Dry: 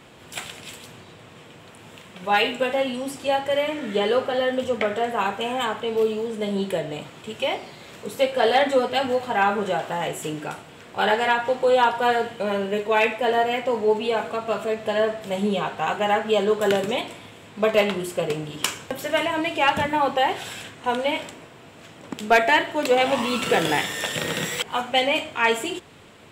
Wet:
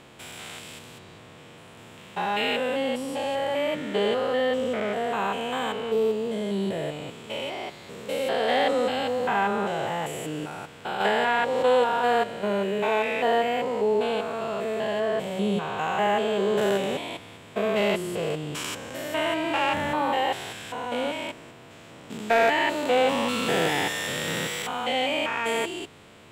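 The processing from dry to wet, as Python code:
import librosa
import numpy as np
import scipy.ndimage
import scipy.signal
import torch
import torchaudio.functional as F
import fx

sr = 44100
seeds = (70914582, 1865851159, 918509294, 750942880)

y = fx.spec_steps(x, sr, hold_ms=200)
y = fx.band_squash(y, sr, depth_pct=100, at=(11.0, 11.63))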